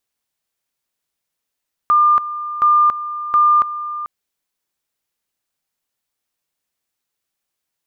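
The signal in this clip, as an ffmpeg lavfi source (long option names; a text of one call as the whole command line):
ffmpeg -f lavfi -i "aevalsrc='pow(10,(-9-13.5*gte(mod(t,0.72),0.28))/20)*sin(2*PI*1200*t)':duration=2.16:sample_rate=44100" out.wav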